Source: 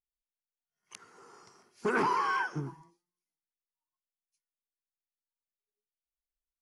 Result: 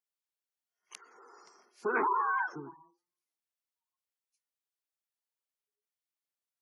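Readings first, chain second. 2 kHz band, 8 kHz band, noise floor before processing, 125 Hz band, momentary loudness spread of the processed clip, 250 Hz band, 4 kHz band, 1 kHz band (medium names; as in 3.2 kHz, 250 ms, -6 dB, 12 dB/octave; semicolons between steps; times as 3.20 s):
-0.5 dB, no reading, under -85 dBFS, -15.0 dB, 17 LU, -6.0 dB, under -10 dB, 0.0 dB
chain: high-pass 340 Hz 12 dB/octave; spectral gate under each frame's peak -20 dB strong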